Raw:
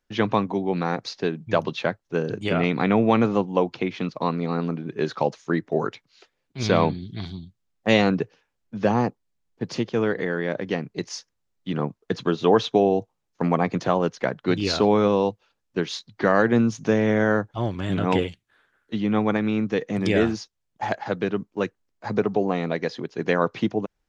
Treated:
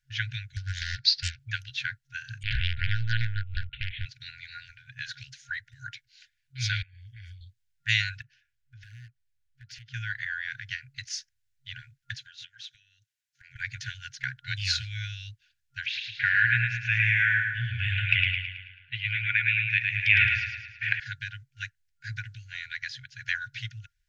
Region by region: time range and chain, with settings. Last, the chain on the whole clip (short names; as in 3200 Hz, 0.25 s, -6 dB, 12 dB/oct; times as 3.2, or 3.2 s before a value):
0.56–1.39 synth low-pass 4500 Hz, resonance Q 6.1 + bell 290 Hz +6 dB 2.2 oct + Doppler distortion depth 0.7 ms
2.43–4.06 LPC vocoder at 8 kHz pitch kept + Doppler distortion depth 0.83 ms
6.82–7.41 compressor 20:1, threshold -32 dBFS + fixed phaser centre 810 Hz, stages 8
8.21–9.94 compressor 4:1, threshold -37 dBFS + high shelf 4200 Hz -6 dB + hard clip -32.5 dBFS
12.14–13.56 HPF 800 Hz 6 dB/oct + compressor 8:1, threshold -37 dBFS
15.86–21 synth low-pass 2500 Hz, resonance Q 5.3 + feedback echo 0.109 s, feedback 49%, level -4 dB
whole clip: FFT band-reject 130–1400 Hz; dynamic EQ 290 Hz, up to -7 dB, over -50 dBFS, Q 0.87